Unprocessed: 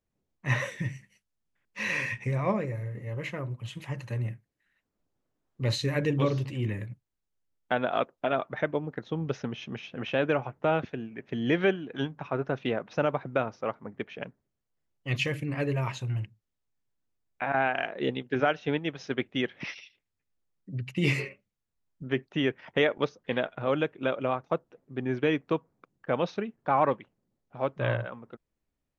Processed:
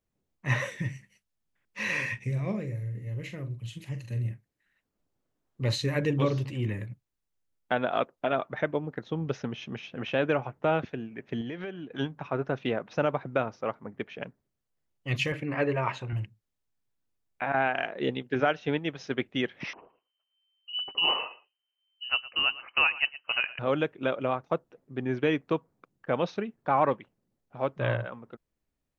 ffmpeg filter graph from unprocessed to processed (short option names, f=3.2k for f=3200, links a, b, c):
-filter_complex "[0:a]asettb=1/sr,asplit=3[a][b][c];[a]atrim=end=2.194[d];[b]atrim=start=2.19:end=4.31,asetpts=PTS-STARTPTS,afade=t=in:d=0.004:c=qsin,afade=t=out:st=2.116:d=0.004:c=qsin,equalizer=f=1k:t=o:w=1.9:g=-14,asplit=2[e][f];[f]adelay=43,volume=-9dB[g];[e][g]amix=inputs=2:normalize=0,atrim=end_sample=93492[h];[c]atrim=start=4.306[i];[d][h]acrossfade=d=0.004:c1=hsin:c2=qsin[j];[j][i]acrossfade=d=0.004:c1=qsin:c2=hsin,asettb=1/sr,asplit=3[k][l][m];[k]atrim=end=11.414[n];[l]atrim=start=11.41:end=11.91,asetpts=PTS-STARTPTS,afade=t=in:d=0.004:c=qsin,afade=t=out:st=0.496:d=0.004:c=qsin,agate=range=-33dB:threshold=-36dB:ratio=3:release=100:detection=peak,lowpass=6.9k,acompressor=threshold=-33dB:ratio=8:attack=3.2:release=140:knee=1:detection=peak[o];[m]atrim=start=11.906[p];[n][o]acrossfade=d=0.004:c1=hsin:c2=qsin[q];[q][p]acrossfade=d=0.004:c1=qsin:c2=hsin,asettb=1/sr,asplit=3[r][s][t];[r]atrim=end=15.324[u];[s]atrim=start=15.32:end=16.13,asetpts=PTS-STARTPTS,afade=t=in:d=0.004:c=qsin,afade=t=out:st=0.806:d=0.004:c=qsin,lowpass=1.6k,aemphasis=mode=production:type=riaa,acontrast=78[v];[t]atrim=start=16.126[w];[u][v]acrossfade=d=0.004:c1=hsin:c2=qsin[x];[x][w]acrossfade=d=0.004:c1=qsin:c2=hsin,asettb=1/sr,asplit=3[y][z][aa];[y]atrim=end=19.734[ab];[z]atrim=start=19.73:end=23.59,asetpts=PTS-STARTPTS,afade=t=in:d=0.004:c=qsin,afade=t=out:st=3.856:d=0.004:c=qsin,aecho=1:1:114:0.133,atrim=end_sample=170226,lowpass=f=2.6k:t=q:w=0.5098,lowpass=f=2.6k:t=q:w=0.6013,lowpass=f=2.6k:t=q:w=0.9,lowpass=f=2.6k:t=q:w=2.563,afreqshift=-3100[ac];[aa]atrim=start=23.586[ad];[ab][ac]acrossfade=d=0.004:c1=hsin:c2=qsin[ae];[ae][ad]acrossfade=d=0.004:c1=qsin:c2=hsin"